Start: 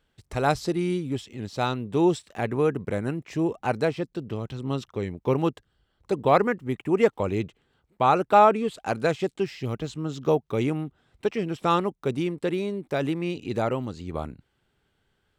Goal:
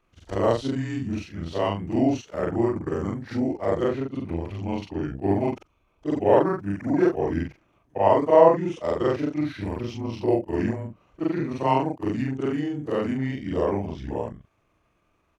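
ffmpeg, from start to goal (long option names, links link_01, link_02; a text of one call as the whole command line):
ffmpeg -i in.wav -filter_complex "[0:a]afftfilt=real='re':imag='-im':win_size=4096:overlap=0.75,asetrate=34006,aresample=44100,atempo=1.29684,equalizer=frequency=590:width_type=o:width=2:gain=6.5,asplit=2[link_01][link_02];[link_02]acompressor=threshold=-34dB:ratio=6,volume=-1dB[link_03];[link_01][link_03]amix=inputs=2:normalize=0" out.wav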